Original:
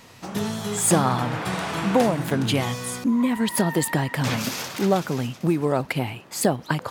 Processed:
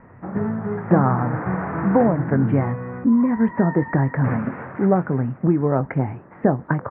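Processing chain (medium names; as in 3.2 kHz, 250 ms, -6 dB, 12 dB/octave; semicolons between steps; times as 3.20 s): steep low-pass 1.9 kHz 48 dB/octave; bass shelf 350 Hz +6 dB; doubling 22 ms -13 dB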